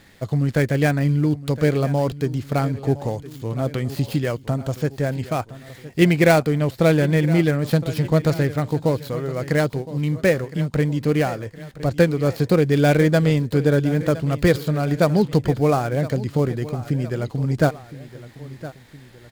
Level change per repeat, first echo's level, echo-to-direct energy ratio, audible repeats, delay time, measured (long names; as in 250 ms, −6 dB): −5.5 dB, −16.0 dB, −15.0 dB, 2, 1,014 ms